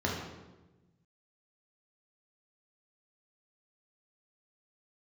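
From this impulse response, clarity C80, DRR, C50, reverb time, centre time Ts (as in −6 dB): 5.0 dB, −3.0 dB, 2.0 dB, 1.1 s, 57 ms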